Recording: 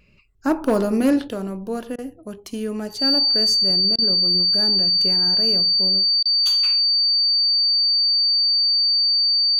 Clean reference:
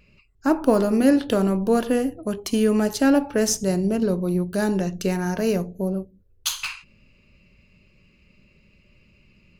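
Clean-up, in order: clip repair -11.5 dBFS; notch 4600 Hz, Q 30; interpolate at 1.96/3.96/6.23, 23 ms; gain 0 dB, from 1.28 s +7.5 dB

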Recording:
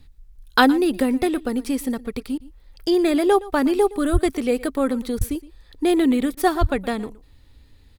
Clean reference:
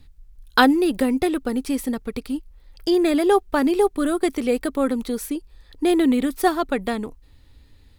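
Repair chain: 4.12–4.24 HPF 140 Hz 24 dB/oct; 5.17–5.29 HPF 140 Hz 24 dB/oct; 6.6–6.72 HPF 140 Hz 24 dB/oct; interpolate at 2.38/5.19/6.35, 20 ms; inverse comb 0.117 s -19.5 dB

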